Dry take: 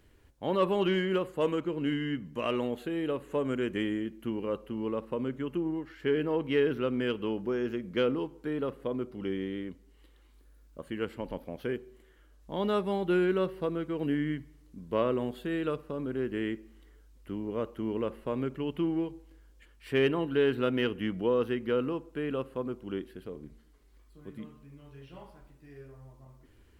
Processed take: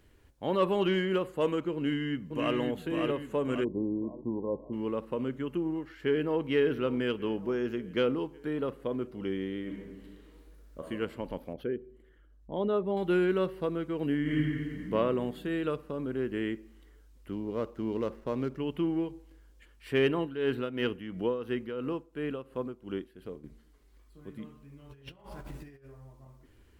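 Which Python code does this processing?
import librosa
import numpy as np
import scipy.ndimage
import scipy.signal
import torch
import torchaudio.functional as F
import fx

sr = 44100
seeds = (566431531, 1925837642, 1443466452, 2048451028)

y = fx.echo_throw(x, sr, start_s=1.75, length_s=0.81, ms=550, feedback_pct=50, wet_db=-4.0)
y = fx.brickwall_lowpass(y, sr, high_hz=1100.0, at=(3.63, 4.72), fade=0.02)
y = fx.echo_throw(y, sr, start_s=6.03, length_s=0.45, ms=570, feedback_pct=65, wet_db=-15.5)
y = fx.reverb_throw(y, sr, start_s=9.61, length_s=1.25, rt60_s=1.4, drr_db=-1.5)
y = fx.envelope_sharpen(y, sr, power=1.5, at=(11.53, 12.97))
y = fx.reverb_throw(y, sr, start_s=14.21, length_s=0.63, rt60_s=2.1, drr_db=-7.0)
y = fx.median_filter(y, sr, points=15, at=(17.32, 18.58))
y = fx.tremolo(y, sr, hz=2.9, depth=0.68, at=(20.19, 23.44))
y = fx.over_compress(y, sr, threshold_db=-56.0, ratio=-0.5, at=(24.89, 25.84), fade=0.02)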